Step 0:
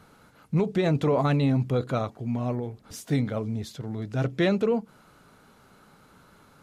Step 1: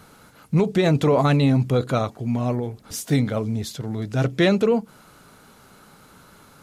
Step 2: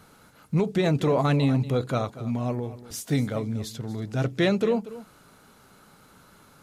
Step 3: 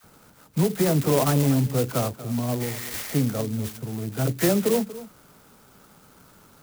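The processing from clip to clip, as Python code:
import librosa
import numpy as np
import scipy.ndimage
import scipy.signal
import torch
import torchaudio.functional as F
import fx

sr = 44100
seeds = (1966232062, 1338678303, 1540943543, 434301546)

y1 = fx.high_shelf(x, sr, hz=4500.0, db=7.0)
y1 = y1 * 10.0 ** (5.0 / 20.0)
y2 = y1 + 10.0 ** (-16.0 / 20.0) * np.pad(y1, (int(237 * sr / 1000.0), 0))[:len(y1)]
y2 = y2 * 10.0 ** (-4.5 / 20.0)
y3 = fx.spec_repair(y2, sr, seeds[0], start_s=2.63, length_s=0.48, low_hz=1100.0, high_hz=4900.0, source='after')
y3 = fx.dispersion(y3, sr, late='lows', ms=42.0, hz=820.0)
y3 = fx.clock_jitter(y3, sr, seeds[1], jitter_ms=0.097)
y3 = y3 * 10.0 ** (1.5 / 20.0)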